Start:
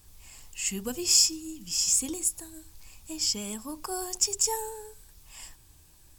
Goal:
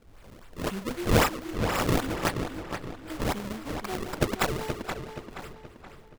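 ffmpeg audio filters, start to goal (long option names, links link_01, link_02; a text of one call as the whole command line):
ffmpeg -i in.wav -filter_complex "[0:a]acrusher=samples=33:mix=1:aa=0.000001:lfo=1:lforange=52.8:lforate=3.8,asplit=2[link_01][link_02];[link_02]adelay=475,lowpass=frequency=4900:poles=1,volume=-7dB,asplit=2[link_03][link_04];[link_04]adelay=475,lowpass=frequency=4900:poles=1,volume=0.43,asplit=2[link_05][link_06];[link_06]adelay=475,lowpass=frequency=4900:poles=1,volume=0.43,asplit=2[link_07][link_08];[link_08]adelay=475,lowpass=frequency=4900:poles=1,volume=0.43,asplit=2[link_09][link_10];[link_10]adelay=475,lowpass=frequency=4900:poles=1,volume=0.43[link_11];[link_01][link_03][link_05][link_07][link_09][link_11]amix=inputs=6:normalize=0" out.wav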